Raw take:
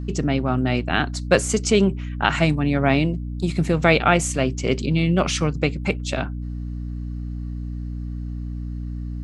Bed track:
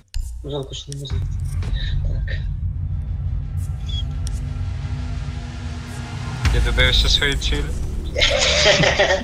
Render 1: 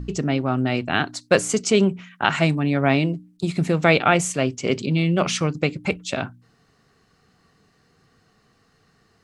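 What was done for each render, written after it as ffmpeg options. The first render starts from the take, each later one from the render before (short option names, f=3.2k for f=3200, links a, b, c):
-af "bandreject=f=60:t=h:w=4,bandreject=f=120:t=h:w=4,bandreject=f=180:t=h:w=4,bandreject=f=240:t=h:w=4,bandreject=f=300:t=h:w=4"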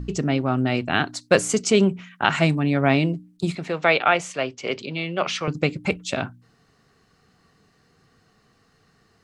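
-filter_complex "[0:a]asettb=1/sr,asplit=3[a][b][c];[a]atrim=end=3.554[d];[b]atrim=start=3.55:end=5.48,asetpts=PTS-STARTPTS,afade=t=in:d=0.004:c=qsin,afade=t=out:st=1.926:d=0.004:c=qsin,acrossover=split=430 5400:gain=0.224 1 0.126[e][f][g];[e][f][g]amix=inputs=3:normalize=0[h];[c]atrim=start=5.476[i];[d][h]acrossfade=d=0.004:c1=hsin:c2=qsin[j];[j][i]acrossfade=d=0.004:c1=qsin:c2=hsin"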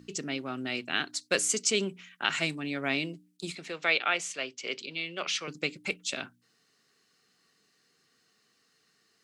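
-af "highpass=410,equalizer=f=780:t=o:w=2.2:g=-15"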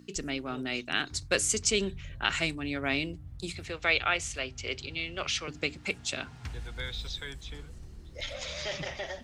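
-filter_complex "[1:a]volume=-21.5dB[a];[0:a][a]amix=inputs=2:normalize=0"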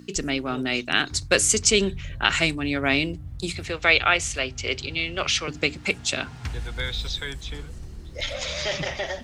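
-af "volume=8dB,alimiter=limit=-3dB:level=0:latency=1"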